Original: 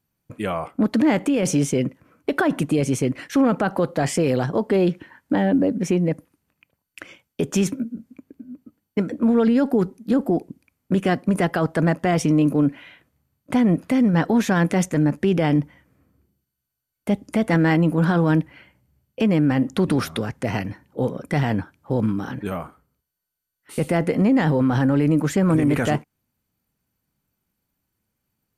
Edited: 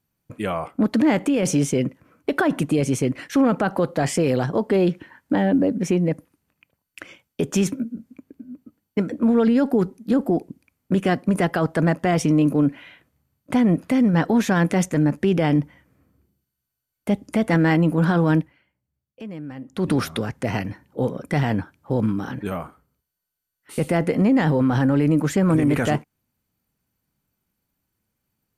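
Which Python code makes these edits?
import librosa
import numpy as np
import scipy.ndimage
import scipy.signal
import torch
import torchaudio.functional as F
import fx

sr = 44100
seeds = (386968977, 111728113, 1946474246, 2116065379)

y = fx.edit(x, sr, fx.fade_down_up(start_s=18.38, length_s=1.49, db=-16.0, fade_s=0.23, curve='qua'), tone=tone)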